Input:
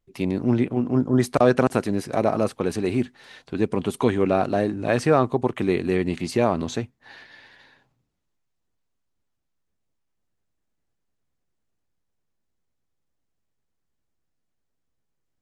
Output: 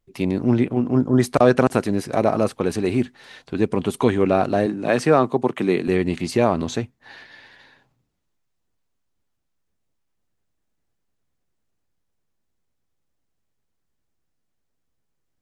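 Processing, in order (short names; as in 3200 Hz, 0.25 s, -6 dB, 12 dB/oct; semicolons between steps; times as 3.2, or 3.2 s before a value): 4.66–5.88 HPF 140 Hz 24 dB/oct; gain +2.5 dB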